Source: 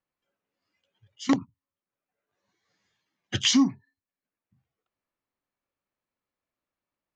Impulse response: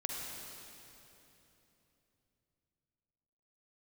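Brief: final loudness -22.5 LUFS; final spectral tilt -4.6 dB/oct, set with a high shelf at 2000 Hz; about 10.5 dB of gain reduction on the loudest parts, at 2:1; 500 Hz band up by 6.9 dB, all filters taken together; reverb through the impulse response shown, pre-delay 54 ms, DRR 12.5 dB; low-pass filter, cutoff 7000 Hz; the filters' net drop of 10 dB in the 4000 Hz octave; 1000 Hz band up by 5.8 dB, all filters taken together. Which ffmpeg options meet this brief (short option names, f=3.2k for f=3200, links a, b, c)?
-filter_complex "[0:a]lowpass=7k,equalizer=f=500:t=o:g=7.5,equalizer=f=1k:t=o:g=7,highshelf=f=2k:g=-8,equalizer=f=4k:t=o:g=-6.5,acompressor=threshold=-34dB:ratio=2,asplit=2[a][b];[1:a]atrim=start_sample=2205,adelay=54[c];[b][c]afir=irnorm=-1:irlink=0,volume=-14.5dB[d];[a][d]amix=inputs=2:normalize=0,volume=13.5dB"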